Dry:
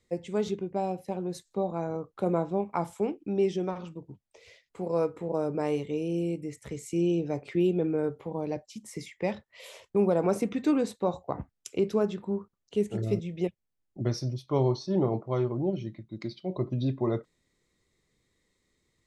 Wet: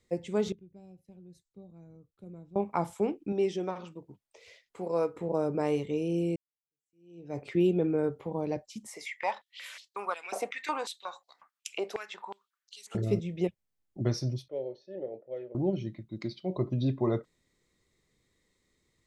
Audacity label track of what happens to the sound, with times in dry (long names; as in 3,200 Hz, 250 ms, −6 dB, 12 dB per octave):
0.520000	2.560000	guitar amp tone stack bass-middle-treble 10-0-1
3.320000	5.160000	low-shelf EQ 200 Hz −10.5 dB
6.360000	7.390000	fade in exponential
8.870000	12.950000	high-pass on a step sequencer 5.5 Hz 710–4,300 Hz
14.480000	15.550000	formant filter e